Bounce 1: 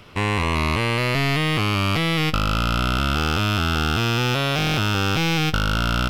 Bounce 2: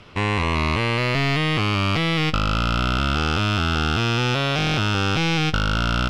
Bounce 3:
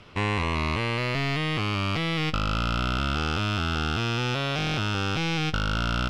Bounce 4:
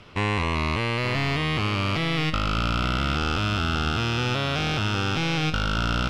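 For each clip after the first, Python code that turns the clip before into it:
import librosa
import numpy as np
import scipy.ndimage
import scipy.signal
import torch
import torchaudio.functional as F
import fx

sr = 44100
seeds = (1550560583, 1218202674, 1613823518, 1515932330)

y1 = scipy.signal.sosfilt(scipy.signal.butter(2, 7000.0, 'lowpass', fs=sr, output='sos'), x)
y2 = fx.rider(y1, sr, range_db=10, speed_s=0.5)
y2 = y2 * librosa.db_to_amplitude(-5.5)
y3 = y2 + 10.0 ** (-10.0 / 20.0) * np.pad(y2, (int(874 * sr / 1000.0), 0))[:len(y2)]
y3 = y3 * librosa.db_to_amplitude(1.5)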